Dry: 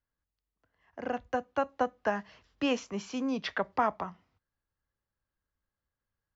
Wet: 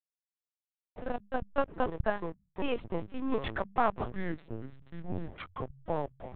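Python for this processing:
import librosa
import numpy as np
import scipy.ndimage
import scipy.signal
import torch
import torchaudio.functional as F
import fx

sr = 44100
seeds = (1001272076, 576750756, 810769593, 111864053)

y = fx.backlash(x, sr, play_db=-34.5)
y = fx.hum_notches(y, sr, base_hz=50, count=4)
y = fx.echo_pitch(y, sr, ms=225, semitones=-7, count=2, db_per_echo=-6.0)
y = fx.lpc_vocoder(y, sr, seeds[0], excitation='pitch_kept', order=10)
y = fx.am_noise(y, sr, seeds[1], hz=5.7, depth_pct=50)
y = y * 10.0 ** (3.0 / 20.0)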